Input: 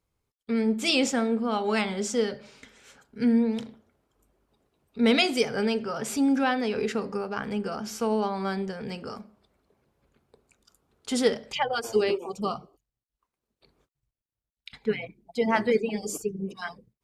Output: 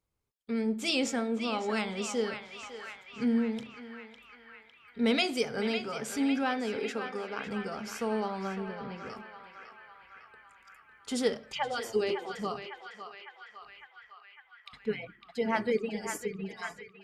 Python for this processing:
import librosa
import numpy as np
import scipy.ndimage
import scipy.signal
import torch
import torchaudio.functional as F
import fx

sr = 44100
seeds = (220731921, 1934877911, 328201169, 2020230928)

p1 = fx.highpass(x, sr, hz=240.0, slope=12, at=(6.76, 7.47))
p2 = fx.air_absorb(p1, sr, metres=340.0, at=(8.47, 9.1))
p3 = p2 + fx.echo_banded(p2, sr, ms=554, feedback_pct=77, hz=1800.0, wet_db=-6, dry=0)
y = p3 * 10.0 ** (-5.5 / 20.0)